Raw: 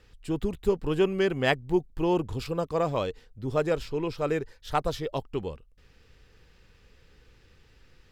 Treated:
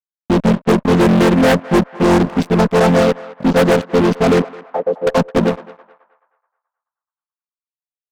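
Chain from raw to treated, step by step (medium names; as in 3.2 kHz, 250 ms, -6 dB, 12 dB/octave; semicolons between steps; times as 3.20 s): vocoder on a held chord major triad, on F3; fuzz box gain 33 dB, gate -42 dBFS; 4.42–5.07 s: auto-wah 470–1100 Hz, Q 3.3, down, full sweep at -14.5 dBFS; on a send: band-passed feedback delay 214 ms, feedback 43%, band-pass 1.2 kHz, level -16 dB; on the sum: trim +4.5 dB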